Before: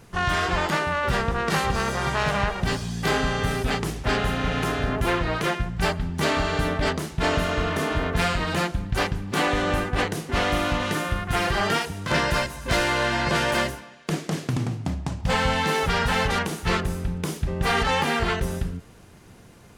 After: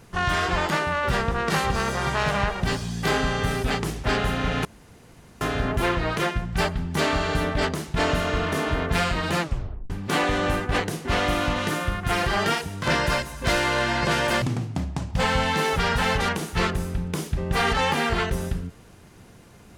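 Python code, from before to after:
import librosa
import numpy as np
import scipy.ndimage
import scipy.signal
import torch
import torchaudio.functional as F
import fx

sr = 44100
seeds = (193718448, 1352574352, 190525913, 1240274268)

y = fx.edit(x, sr, fx.insert_room_tone(at_s=4.65, length_s=0.76),
    fx.tape_stop(start_s=8.65, length_s=0.49),
    fx.cut(start_s=13.66, length_s=0.86), tone=tone)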